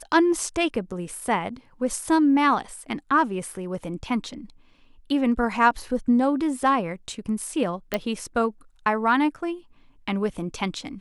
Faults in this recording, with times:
7.94 pop -10 dBFS

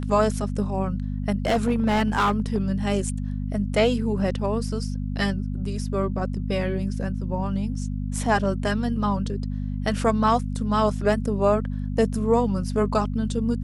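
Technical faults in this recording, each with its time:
hum 50 Hz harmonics 5 -28 dBFS
1.46–2.58 clipped -16 dBFS

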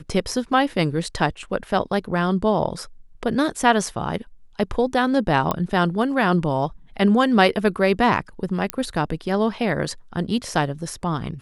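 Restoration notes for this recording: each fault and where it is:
5.51 pop -9 dBFS
8.7 pop -7 dBFS

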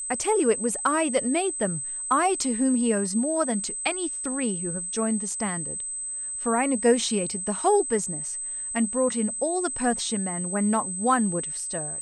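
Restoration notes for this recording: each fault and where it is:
tone 8200 Hz -30 dBFS

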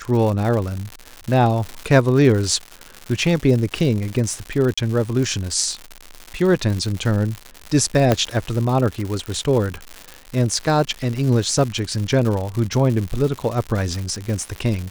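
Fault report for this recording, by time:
crackle 180/s -24 dBFS
4.74–4.78 gap 35 ms
8.12 pop -3 dBFS
9.26 pop -15 dBFS

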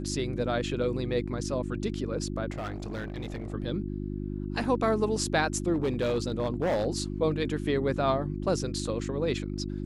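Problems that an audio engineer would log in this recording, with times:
hum 50 Hz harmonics 7 -34 dBFS
2.5–3.54 clipped -31 dBFS
5.73–6.87 clipped -23 dBFS

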